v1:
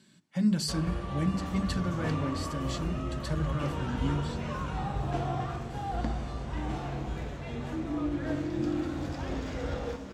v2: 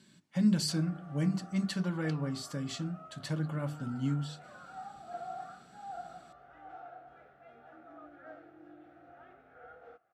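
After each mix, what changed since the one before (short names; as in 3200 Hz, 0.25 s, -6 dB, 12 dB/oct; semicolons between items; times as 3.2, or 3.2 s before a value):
first sound: add double band-pass 1000 Hz, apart 0.86 oct; second sound: muted; reverb: off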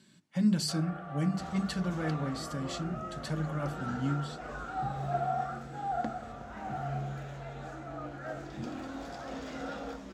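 first sound +9.5 dB; second sound: unmuted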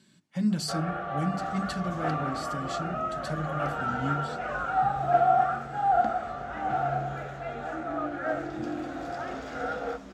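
first sound +10.5 dB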